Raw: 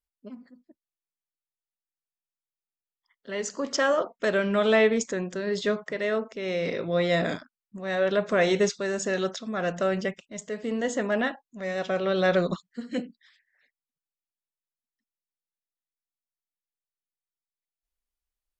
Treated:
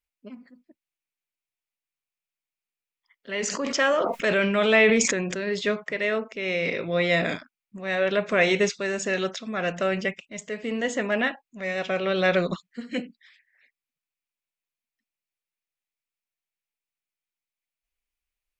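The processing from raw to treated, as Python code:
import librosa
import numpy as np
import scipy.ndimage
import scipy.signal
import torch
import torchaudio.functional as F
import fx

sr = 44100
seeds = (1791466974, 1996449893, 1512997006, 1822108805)

y = fx.peak_eq(x, sr, hz=2400.0, db=10.5, octaves=0.65)
y = fx.sustainer(y, sr, db_per_s=31.0, at=(3.32, 5.44))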